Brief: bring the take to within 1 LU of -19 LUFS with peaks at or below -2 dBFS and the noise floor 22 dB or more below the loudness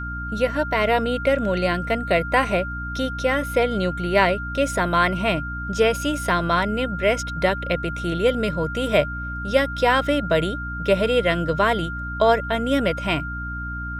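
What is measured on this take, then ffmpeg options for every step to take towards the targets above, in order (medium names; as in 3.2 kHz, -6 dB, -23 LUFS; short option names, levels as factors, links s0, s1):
hum 60 Hz; highest harmonic 300 Hz; hum level -29 dBFS; steady tone 1.4 kHz; tone level -30 dBFS; loudness -22.0 LUFS; peak level -3.5 dBFS; loudness target -19.0 LUFS
-> -af "bandreject=f=60:t=h:w=4,bandreject=f=120:t=h:w=4,bandreject=f=180:t=h:w=4,bandreject=f=240:t=h:w=4,bandreject=f=300:t=h:w=4"
-af "bandreject=f=1400:w=30"
-af "volume=1.41,alimiter=limit=0.794:level=0:latency=1"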